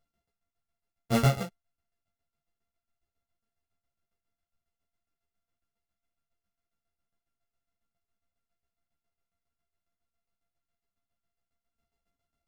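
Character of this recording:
a buzz of ramps at a fixed pitch in blocks of 64 samples
tremolo saw down 7.3 Hz, depth 85%
a shimmering, thickened sound

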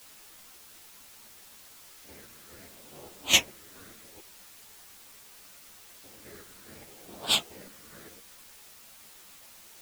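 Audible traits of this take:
phaser sweep stages 8, 0.73 Hz, lowest notch 760–2,000 Hz
chopped level 2.4 Hz, depth 60%, duty 40%
a quantiser's noise floor 10 bits, dither triangular
a shimmering, thickened sound

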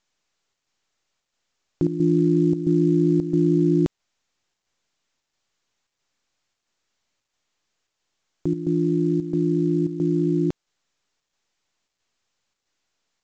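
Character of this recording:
chopped level 1.5 Hz, depth 65%, duty 80%
mu-law

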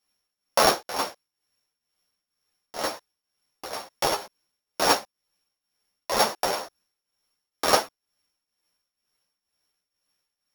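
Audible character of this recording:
a buzz of ramps at a fixed pitch in blocks of 8 samples
tremolo triangle 2.1 Hz, depth 80%
a shimmering, thickened sound

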